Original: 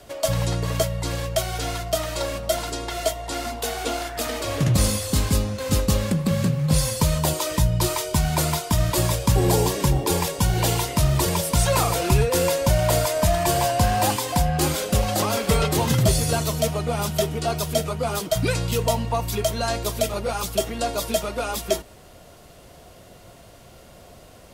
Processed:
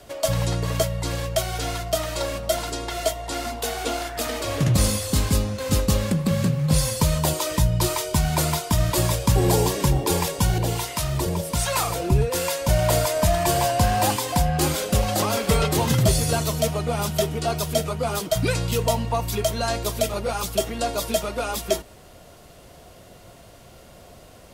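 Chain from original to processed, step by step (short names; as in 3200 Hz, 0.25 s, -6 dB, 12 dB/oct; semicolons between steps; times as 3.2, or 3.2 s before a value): 10.58–12.69 harmonic tremolo 1.3 Hz, depth 70%, crossover 700 Hz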